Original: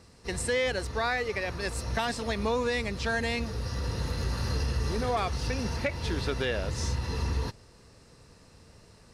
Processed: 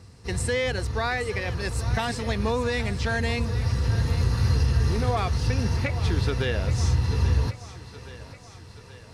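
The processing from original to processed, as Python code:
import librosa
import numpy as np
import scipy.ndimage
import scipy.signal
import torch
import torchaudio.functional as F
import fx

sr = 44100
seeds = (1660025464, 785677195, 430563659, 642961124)

y = fx.peak_eq(x, sr, hz=100.0, db=11.5, octaves=1.1)
y = fx.notch(y, sr, hz=580.0, q=13.0)
y = fx.echo_thinned(y, sr, ms=827, feedback_pct=63, hz=230.0, wet_db=-13.5)
y = y * librosa.db_to_amplitude(1.5)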